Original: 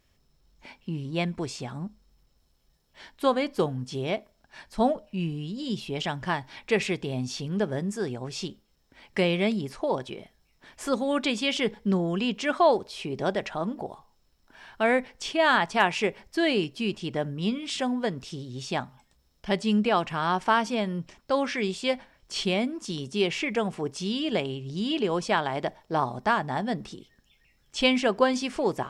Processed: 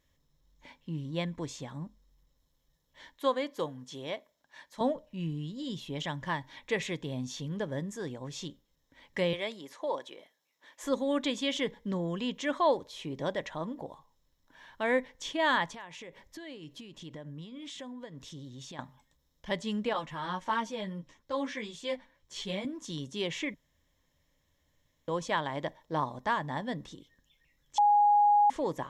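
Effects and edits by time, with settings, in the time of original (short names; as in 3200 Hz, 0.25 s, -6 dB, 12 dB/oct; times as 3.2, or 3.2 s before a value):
3.13–4.81 HPF 400 Hz 6 dB/oct
9.33–10.84 HPF 420 Hz
15.73–18.79 compressor, threshold -36 dBFS
19.93–22.65 ensemble effect
23.54–25.08 room tone
27.78–28.5 bleep 826 Hz -11.5 dBFS
whole clip: ripple EQ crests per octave 1.1, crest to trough 8 dB; gain -6.5 dB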